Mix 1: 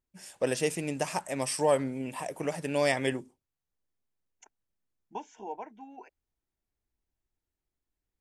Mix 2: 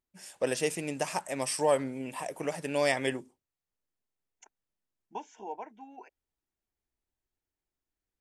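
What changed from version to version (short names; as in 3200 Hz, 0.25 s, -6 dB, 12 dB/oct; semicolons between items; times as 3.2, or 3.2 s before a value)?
master: add low shelf 210 Hz -6 dB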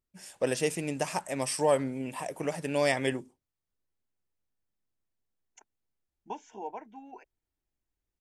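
second voice: entry +1.15 s; master: add low shelf 210 Hz +6 dB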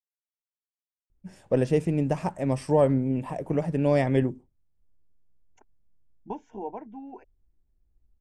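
first voice: entry +1.10 s; master: add tilt -4.5 dB/oct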